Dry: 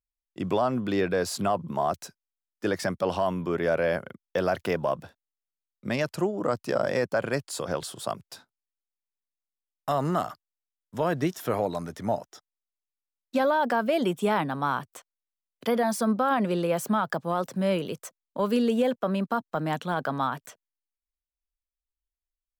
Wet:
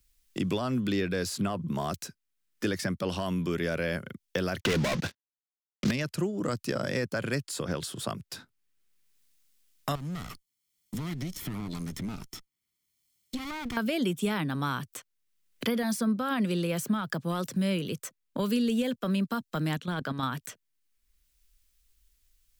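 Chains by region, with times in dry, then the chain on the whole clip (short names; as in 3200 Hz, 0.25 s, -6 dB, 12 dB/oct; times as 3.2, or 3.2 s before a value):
4.6–5.91 CVSD 32 kbps + low shelf 370 Hz -6.5 dB + sample leveller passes 5
9.95–13.77 minimum comb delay 0.92 ms + bell 1200 Hz -5.5 dB 1.4 oct + compressor 4:1, threshold -40 dBFS
19.77–20.23 high shelf 8700 Hz -7.5 dB + level quantiser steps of 10 dB
whole clip: bell 760 Hz -14.5 dB 1.8 oct; three-band squash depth 70%; gain +3 dB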